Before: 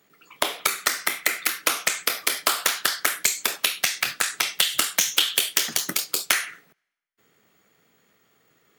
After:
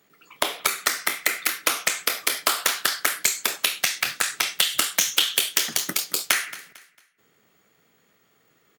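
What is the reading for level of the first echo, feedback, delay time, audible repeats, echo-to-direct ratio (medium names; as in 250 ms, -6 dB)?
-17.5 dB, 33%, 225 ms, 2, -17.0 dB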